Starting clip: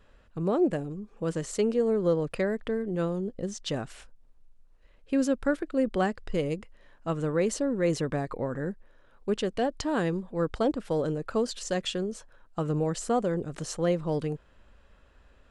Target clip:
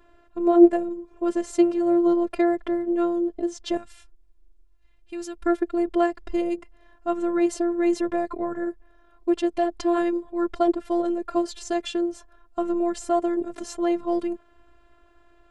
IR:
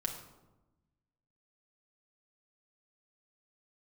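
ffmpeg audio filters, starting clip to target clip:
-af "asetnsamples=nb_out_samples=441:pad=0,asendcmd='3.77 equalizer g -6.5;5.46 equalizer g 8.5',equalizer=frequency=450:width=0.35:gain=11,afftfilt=real='hypot(re,im)*cos(PI*b)':imag='0':win_size=512:overlap=0.75,volume=1.5dB"

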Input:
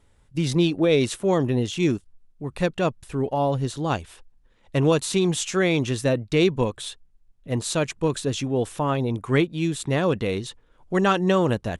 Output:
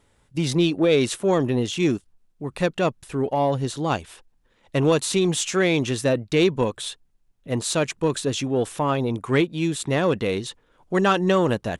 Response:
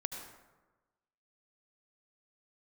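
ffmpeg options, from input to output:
-filter_complex "[0:a]lowshelf=frequency=93:gain=-10.5,asplit=2[link_01][link_02];[link_02]asoftclip=type=tanh:threshold=-18.5dB,volume=-4dB[link_03];[link_01][link_03]amix=inputs=2:normalize=0,volume=-1.5dB"

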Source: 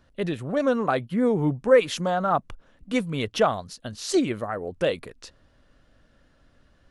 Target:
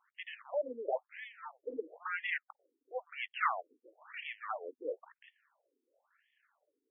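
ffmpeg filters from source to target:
ffmpeg -i in.wav -filter_complex "[0:a]acrossover=split=530 3800:gain=0.158 1 0.251[link_01][link_02][link_03];[link_01][link_02][link_03]amix=inputs=3:normalize=0,aeval=exprs='max(val(0),0)':channel_layout=same,afftfilt=real='re*between(b*sr/1024,330*pow(2500/330,0.5+0.5*sin(2*PI*0.99*pts/sr))/1.41,330*pow(2500/330,0.5+0.5*sin(2*PI*0.99*pts/sr))*1.41)':imag='im*between(b*sr/1024,330*pow(2500/330,0.5+0.5*sin(2*PI*0.99*pts/sr))/1.41,330*pow(2500/330,0.5+0.5*sin(2*PI*0.99*pts/sr))*1.41)':win_size=1024:overlap=0.75,volume=2dB" out.wav

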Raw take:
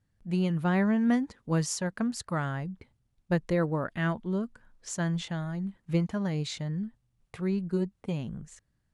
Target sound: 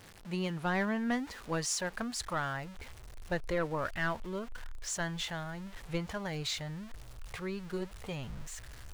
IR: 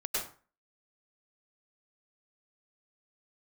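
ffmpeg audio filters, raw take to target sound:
-filter_complex "[0:a]aeval=exprs='val(0)+0.5*0.00708*sgn(val(0))':channel_layout=same,asplit=2[link_01][link_02];[link_02]highpass=frequency=720:poles=1,volume=12dB,asoftclip=type=tanh:threshold=-14.5dB[link_03];[link_01][link_03]amix=inputs=2:normalize=0,lowpass=frequency=7700:poles=1,volume=-6dB,asubboost=boost=11.5:cutoff=61,volume=-5.5dB"

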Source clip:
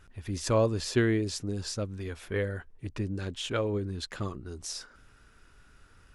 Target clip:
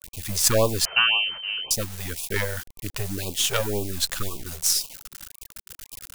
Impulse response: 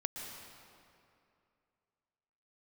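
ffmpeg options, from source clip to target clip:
-filter_complex "[0:a]aeval=exprs='if(lt(val(0),0),0.251*val(0),val(0))':channel_layout=same,asettb=1/sr,asplit=3[link_01][link_02][link_03];[link_01]atrim=end=3.714[link_04];[link_02]atrim=start=3.71:end=4.43,asetpts=PTS-STARTPTS,afade=type=in:duration=0.004:curve=qsin,afade=type=out:start_time=0.716:duration=0.004:curve=qsin,asubboost=boost=11.5:cutoff=64[link_05];[link_03]atrim=start=4.426[link_06];[link_04][link_05]acrossfade=duration=0.004:curve1=hsin:curve2=qsin[link_07];[link_07][link_06]acrossfade=duration=0.004:curve1=qsin:curve2=hsin,acrusher=bits=8:mix=0:aa=0.000001,crystalizer=i=4.5:c=0,asettb=1/sr,asplit=3[link_08][link_09][link_10];[link_08]atrim=end=0.854[link_11];[link_09]atrim=start=0.85:end=1.71,asetpts=PTS-STARTPTS,afade=type=in:duration=0.004:curve=qsin,afade=type=out:start_time=0.856:duration=0.004:curve=qsin,lowpass=frequency=2600:width_type=q:width=0.5098,lowpass=frequency=2600:width_type=q:width=0.6013,lowpass=frequency=2600:width_type=q:width=0.9,lowpass=frequency=2600:width_type=q:width=2.563,afreqshift=-3100[link_12];[link_10]atrim=start=1.706[link_13];[link_11][link_12]acrossfade=duration=0.004:curve1=hsin:curve2=qsin[link_14];[link_14][link_13]acrossfade=duration=0.004:curve1=qsin:curve2=hsin,afftfilt=real='re*(1-between(b*sr/1024,250*pow(1700/250,0.5+0.5*sin(2*PI*1.9*pts/sr))/1.41,250*pow(1700/250,0.5+0.5*sin(2*PI*1.9*pts/sr))*1.41))':imag='im*(1-between(b*sr/1024,250*pow(1700/250,0.5+0.5*sin(2*PI*1.9*pts/sr))/1.41,250*pow(1700/250,0.5+0.5*sin(2*PI*1.9*pts/sr))*1.41))':win_size=1024:overlap=0.75,volume=7dB"

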